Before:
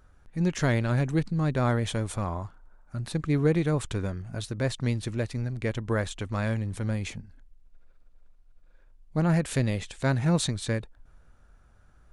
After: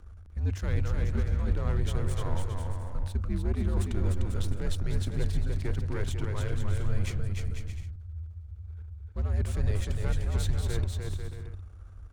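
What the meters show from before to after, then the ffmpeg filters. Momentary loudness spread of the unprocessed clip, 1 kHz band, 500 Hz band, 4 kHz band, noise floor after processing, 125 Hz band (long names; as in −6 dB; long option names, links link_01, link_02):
9 LU, −8.5 dB, −8.0 dB, −6.0 dB, −46 dBFS, −1.5 dB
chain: -af "aeval=exprs='if(lt(val(0),0),0.251*val(0),val(0))':channel_layout=same,areverse,acompressor=threshold=-37dB:ratio=6,areverse,afreqshift=-94,lowshelf=frequency=260:gain=11.5,aecho=1:1:300|495|621.8|704.1|757.7:0.631|0.398|0.251|0.158|0.1,volume=2dB"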